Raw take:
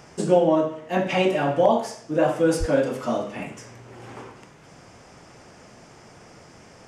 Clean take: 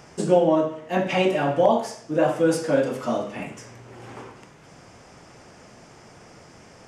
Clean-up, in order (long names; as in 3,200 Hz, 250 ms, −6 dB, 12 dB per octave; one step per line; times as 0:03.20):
0:02.59–0:02.71: high-pass filter 140 Hz 24 dB per octave